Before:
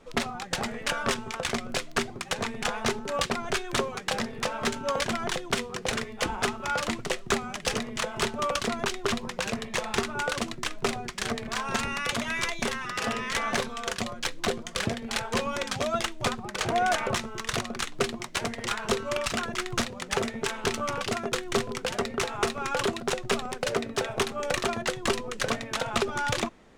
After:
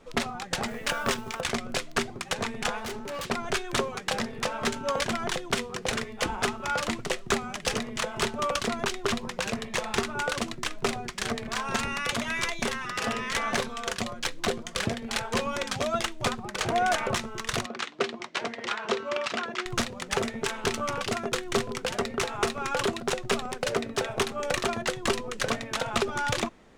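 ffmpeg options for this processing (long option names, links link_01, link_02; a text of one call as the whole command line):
ffmpeg -i in.wav -filter_complex "[0:a]asettb=1/sr,asplit=3[link_01][link_02][link_03];[link_01]atrim=end=0.684[link_04];[link_02]atrim=start=0.68:end=1.41,asetpts=PTS-STARTPTS,afade=type=in:duration=0.004:curve=qsin,afade=type=out:start_time=0.726:duration=0.004:curve=qsin,acrusher=bits=5:mode=log:mix=0:aa=0.000001[link_05];[link_03]atrim=start=1.406[link_06];[link_04][link_05]acrossfade=duration=0.004:curve1=hsin:curve2=qsin[link_07];[link_07][link_06]acrossfade=duration=0.004:curve1=qsin:curve2=hsin,asettb=1/sr,asplit=3[link_08][link_09][link_10];[link_08]atrim=end=2.784[link_11];[link_09]atrim=start=2.78:end=3.26,asetpts=PTS-STARTPTS,afade=type=in:duration=0.004:curve=qsin,afade=type=out:start_time=0.476:duration=0.004:curve=qsin,volume=32.5dB,asoftclip=hard,volume=-32.5dB[link_12];[link_10]atrim=start=3.256[link_13];[link_11][link_12]acrossfade=duration=0.004:curve1=hsin:curve2=qsin[link_14];[link_14][link_13]acrossfade=duration=0.004:curve1=qsin:curve2=hsin,asettb=1/sr,asplit=3[link_15][link_16][link_17];[link_15]atrim=end=17.664[link_18];[link_16]atrim=start=17.66:end=19.66,asetpts=PTS-STARTPTS,afade=type=in:duration=0.004:curve=qsin,afade=type=out:start_time=1.996:duration=0.004:curve=qsin,highpass=260,lowpass=4600[link_19];[link_17]atrim=start=19.656[link_20];[link_18][link_19]acrossfade=duration=0.004:curve1=hsin:curve2=qsin[link_21];[link_21][link_20]acrossfade=duration=0.004:curve1=qsin:curve2=hsin" out.wav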